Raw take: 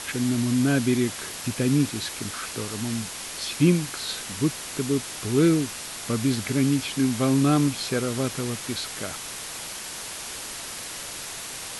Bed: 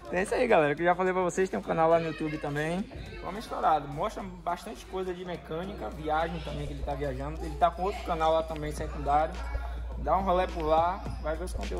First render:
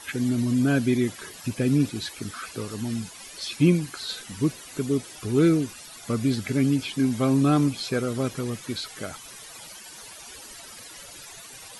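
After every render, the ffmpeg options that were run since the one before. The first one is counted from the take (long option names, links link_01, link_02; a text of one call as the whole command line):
ffmpeg -i in.wav -af "afftdn=noise_reduction=14:noise_floor=-36" out.wav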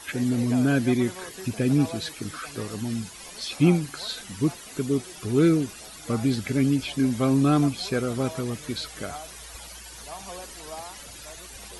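ffmpeg -i in.wav -i bed.wav -filter_complex "[1:a]volume=-14.5dB[link_01];[0:a][link_01]amix=inputs=2:normalize=0" out.wav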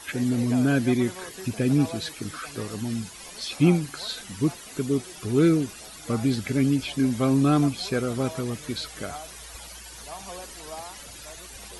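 ffmpeg -i in.wav -af anull out.wav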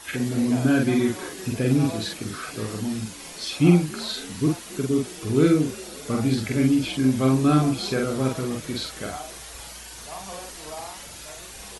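ffmpeg -i in.wav -filter_complex "[0:a]asplit=2[link_01][link_02];[link_02]adelay=46,volume=-2dB[link_03];[link_01][link_03]amix=inputs=2:normalize=0,asplit=6[link_04][link_05][link_06][link_07][link_08][link_09];[link_05]adelay=273,afreqshift=51,volume=-22.5dB[link_10];[link_06]adelay=546,afreqshift=102,volume=-26.8dB[link_11];[link_07]adelay=819,afreqshift=153,volume=-31.1dB[link_12];[link_08]adelay=1092,afreqshift=204,volume=-35.4dB[link_13];[link_09]adelay=1365,afreqshift=255,volume=-39.7dB[link_14];[link_04][link_10][link_11][link_12][link_13][link_14]amix=inputs=6:normalize=0" out.wav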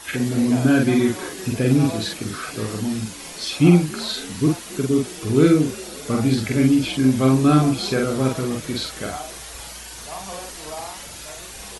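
ffmpeg -i in.wav -af "volume=3.5dB,alimiter=limit=-2dB:level=0:latency=1" out.wav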